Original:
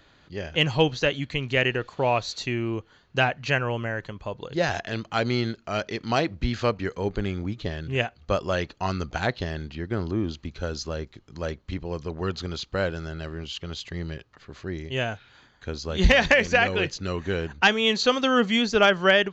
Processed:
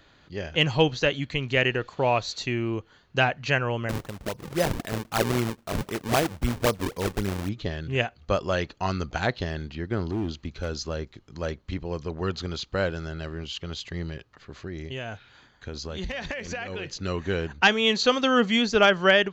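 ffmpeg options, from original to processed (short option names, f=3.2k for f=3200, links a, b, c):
-filter_complex "[0:a]asettb=1/sr,asplit=3[a][b][c];[a]atrim=end=3.894[d];[b]atrim=start=3.89:end=7.49,asetpts=PTS-STARTPTS,afade=t=in:d=0.004:c=qsin,afade=t=out:st=3.596:d=0.004:c=qsin,acrusher=samples=38:mix=1:aa=0.000001:lfo=1:lforange=60.8:lforate=3.8[e];[c]atrim=start=7.486[f];[d][e]acrossfade=d=0.004:c1=hsin:c2=qsin[g];[g][f]acrossfade=d=0.004:c1=qsin:c2=hsin,asplit=3[h][i][j];[h]afade=t=out:st=10.08:d=0.02[k];[i]asoftclip=type=hard:threshold=-23.5dB,afade=t=in:st=10.08:d=0.02,afade=t=out:st=10.68:d=0.02[l];[j]afade=t=in:st=10.68:d=0.02[m];[k][l][m]amix=inputs=3:normalize=0,asettb=1/sr,asplit=3[n][o][p];[n]atrim=end=14.094[q];[o]atrim=start=14.09:end=17.01,asetpts=PTS-STARTPTS,afade=t=in:d=0.004:c=qsin,afade=t=out:st=2.916:d=0.004:c=qsin,acompressor=threshold=-30dB:ratio=6:attack=3.2:release=140:knee=1:detection=peak[r];[p]atrim=start=17.006[s];[q][r]acrossfade=d=0.004:c1=hsin:c2=qsin[t];[t][s]acrossfade=d=0.004:c1=qsin:c2=hsin"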